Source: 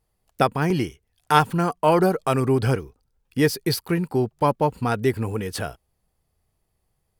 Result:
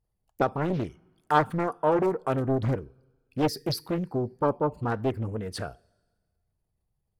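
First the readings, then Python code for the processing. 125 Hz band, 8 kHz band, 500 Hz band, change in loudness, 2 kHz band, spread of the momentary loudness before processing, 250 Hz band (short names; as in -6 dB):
-6.0 dB, -10.0 dB, -5.0 dB, -5.5 dB, -7.5 dB, 9 LU, -5.5 dB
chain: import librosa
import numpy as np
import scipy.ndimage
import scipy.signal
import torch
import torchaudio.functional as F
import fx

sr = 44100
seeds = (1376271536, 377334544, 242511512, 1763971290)

y = fx.envelope_sharpen(x, sr, power=1.5)
y = fx.rev_double_slope(y, sr, seeds[0], early_s=0.29, late_s=1.5, knee_db=-18, drr_db=17.0)
y = fx.doppler_dist(y, sr, depth_ms=0.84)
y = y * 10.0 ** (-5.5 / 20.0)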